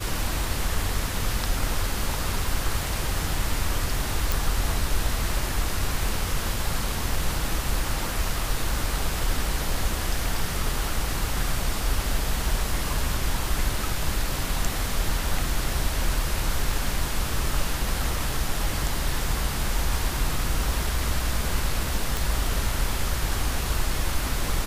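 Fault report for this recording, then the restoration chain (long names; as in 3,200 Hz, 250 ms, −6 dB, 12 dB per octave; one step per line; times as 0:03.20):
0:04.32: click
0:22.17: click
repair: click removal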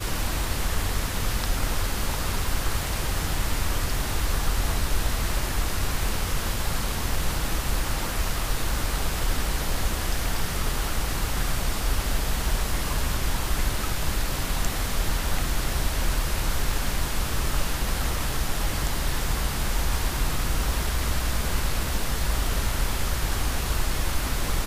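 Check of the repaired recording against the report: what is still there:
none of them is left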